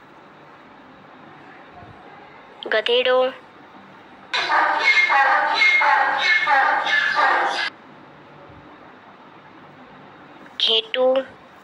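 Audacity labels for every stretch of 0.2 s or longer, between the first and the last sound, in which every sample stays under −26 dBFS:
3.310000	4.340000	silence
7.680000	10.600000	silence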